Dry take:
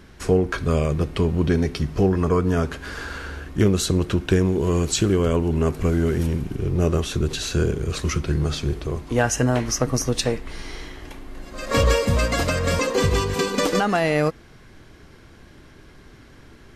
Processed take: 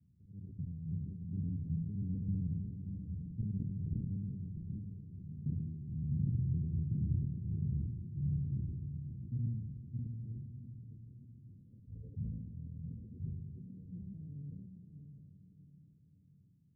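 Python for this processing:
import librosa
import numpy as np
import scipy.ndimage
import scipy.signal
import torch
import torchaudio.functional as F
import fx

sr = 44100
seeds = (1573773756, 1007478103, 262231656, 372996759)

y = fx.local_reverse(x, sr, ms=69.0)
y = fx.doppler_pass(y, sr, speed_mps=20, closest_m=4.1, pass_at_s=5.02)
y = scipy.signal.sosfilt(scipy.signal.butter(4, 97.0, 'highpass', fs=sr, output='sos'), y)
y = fx.auto_swell(y, sr, attack_ms=285.0)
y = fx.over_compress(y, sr, threshold_db=-44.0, ratio=-1.0)
y = scipy.signal.sosfilt(scipy.signal.cheby2(4, 80, 1000.0, 'lowpass', fs=sr, output='sos'), y)
y = fx.echo_diffused(y, sr, ms=718, feedback_pct=42, wet_db=-7.5)
y = fx.sustainer(y, sr, db_per_s=41.0)
y = y * 10.0 ** (8.0 / 20.0)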